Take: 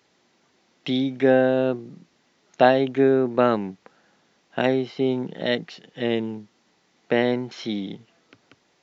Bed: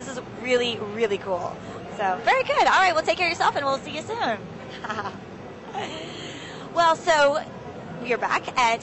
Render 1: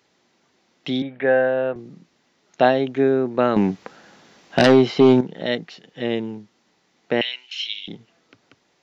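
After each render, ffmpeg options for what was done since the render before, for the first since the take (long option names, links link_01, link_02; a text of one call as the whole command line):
ffmpeg -i in.wav -filter_complex "[0:a]asettb=1/sr,asplit=3[link_01][link_02][link_03];[link_01]atrim=end=1.024[link_04];[link_02]atrim=start=1.02:end=1.76,asetpts=PTS-STARTPTS,afade=type=in:duration=0.004:curve=qsin,afade=type=out:start_time=0.736:duration=0.004:curve=qsin,highpass=frequency=150:width=0.5412,highpass=frequency=150:width=1.3066,equalizer=frequency=250:width_type=q:width=4:gain=-8,equalizer=frequency=360:width_type=q:width=4:gain=-8,equalizer=frequency=540:width_type=q:width=4:gain=3,equalizer=frequency=1700:width_type=q:width=4:gain=6,lowpass=frequency=2800:width=0.5412,lowpass=frequency=2800:width=1.3066[link_05];[link_03]atrim=start=1.756[link_06];[link_04][link_05]acrossfade=duration=0.004:curve1=hsin:curve2=qsin[link_07];[link_07][link_06]acrossfade=duration=0.004:curve1=qsin:curve2=hsin,asettb=1/sr,asplit=3[link_08][link_09][link_10];[link_08]atrim=end=3.564[link_11];[link_09]atrim=start=3.56:end=5.21,asetpts=PTS-STARTPTS,afade=type=in:duration=0.004:curve=qsin,afade=type=out:start_time=1.646:duration=0.004:curve=qsin,aeval=exprs='0.501*sin(PI/2*2.51*val(0)/0.501)':channel_layout=same[link_12];[link_10]atrim=start=5.206[link_13];[link_11][link_12]acrossfade=duration=0.004:curve1=hsin:curve2=qsin[link_14];[link_14][link_13]acrossfade=duration=0.004:curve1=qsin:curve2=hsin,asettb=1/sr,asplit=3[link_15][link_16][link_17];[link_15]atrim=end=7.214[link_18];[link_16]atrim=start=7.21:end=7.88,asetpts=PTS-STARTPTS,afade=type=in:duration=0.004:curve=qsin,afade=type=out:start_time=0.666:duration=0.004:curve=qsin,highpass=frequency=2800:width_type=q:width=10[link_19];[link_17]atrim=start=7.876[link_20];[link_18][link_19]acrossfade=duration=0.004:curve1=hsin:curve2=qsin[link_21];[link_21][link_20]acrossfade=duration=0.004:curve1=qsin:curve2=hsin" out.wav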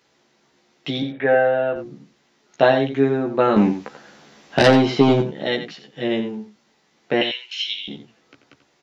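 ffmpeg -i in.wav -filter_complex "[0:a]asplit=2[link_01][link_02];[link_02]adelay=14,volume=-3dB[link_03];[link_01][link_03]amix=inputs=2:normalize=0,asplit=2[link_04][link_05];[link_05]adelay=87.46,volume=-10dB,highshelf=frequency=4000:gain=-1.97[link_06];[link_04][link_06]amix=inputs=2:normalize=0" out.wav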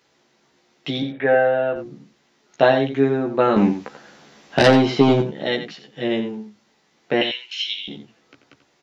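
ffmpeg -i in.wav -af "bandreject=frequency=105.6:width_type=h:width=4,bandreject=frequency=211.2:width_type=h:width=4,bandreject=frequency=316.8:width_type=h:width=4" out.wav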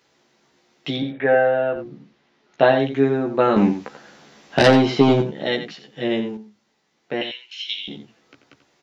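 ffmpeg -i in.wav -filter_complex "[0:a]asettb=1/sr,asplit=3[link_01][link_02][link_03];[link_01]atrim=end=0.964[link_04];[link_02]atrim=start=0.96:end=2.79,asetpts=PTS-STARTPTS,afade=type=in:duration=0.004:curve=qsin,afade=type=out:start_time=1.826:duration=0.004:curve=qsin,lowpass=4000[link_05];[link_03]atrim=start=2.786[link_06];[link_04][link_05]acrossfade=duration=0.004:curve1=hsin:curve2=qsin[link_07];[link_07][link_06]acrossfade=duration=0.004:curve1=qsin:curve2=hsin,asplit=3[link_08][link_09][link_10];[link_08]atrim=end=6.372[link_11];[link_09]atrim=start=6.368:end=7.692,asetpts=PTS-STARTPTS,volume=-6dB[link_12];[link_10]atrim=start=7.688[link_13];[link_11][link_12]acrossfade=duration=0.004:curve1=hsin:curve2=hsin[link_14];[link_14][link_13]acrossfade=duration=0.004:curve1=hsin:curve2=hsin" out.wav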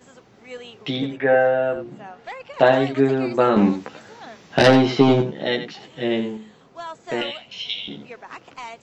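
ffmpeg -i in.wav -i bed.wav -filter_complex "[1:a]volume=-15.5dB[link_01];[0:a][link_01]amix=inputs=2:normalize=0" out.wav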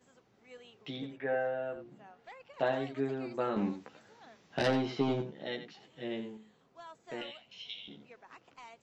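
ffmpeg -i in.wav -af "volume=-16dB" out.wav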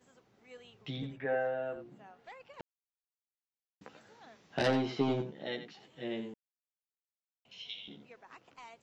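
ffmpeg -i in.wav -filter_complex "[0:a]asplit=3[link_01][link_02][link_03];[link_01]afade=type=out:start_time=0.59:duration=0.02[link_04];[link_02]asubboost=boost=10:cutoff=160,afade=type=in:start_time=0.59:duration=0.02,afade=type=out:start_time=1.24:duration=0.02[link_05];[link_03]afade=type=in:start_time=1.24:duration=0.02[link_06];[link_04][link_05][link_06]amix=inputs=3:normalize=0,asplit=5[link_07][link_08][link_09][link_10][link_11];[link_07]atrim=end=2.61,asetpts=PTS-STARTPTS,afade=type=out:start_time=2.606:duration=0.004:curve=hsin[link_12];[link_08]atrim=start=2.61:end=3.81,asetpts=PTS-STARTPTS,volume=0[link_13];[link_09]atrim=start=3.81:end=6.34,asetpts=PTS-STARTPTS,afade=type=in:duration=0.004:curve=hsin,afade=type=out:start_time=2.526:duration=0.004:curve=hsin[link_14];[link_10]atrim=start=6.34:end=7.45,asetpts=PTS-STARTPTS,volume=0[link_15];[link_11]atrim=start=7.45,asetpts=PTS-STARTPTS,afade=type=in:duration=0.004:curve=hsin[link_16];[link_12][link_13][link_14][link_15][link_16]concat=n=5:v=0:a=1" out.wav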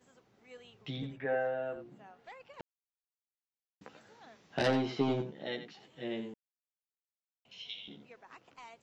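ffmpeg -i in.wav -af anull out.wav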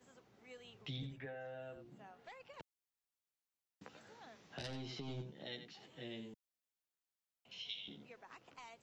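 ffmpeg -i in.wav -filter_complex "[0:a]alimiter=level_in=3.5dB:limit=-24dB:level=0:latency=1:release=210,volume=-3.5dB,acrossover=split=140|3000[link_01][link_02][link_03];[link_02]acompressor=threshold=-54dB:ratio=2.5[link_04];[link_01][link_04][link_03]amix=inputs=3:normalize=0" out.wav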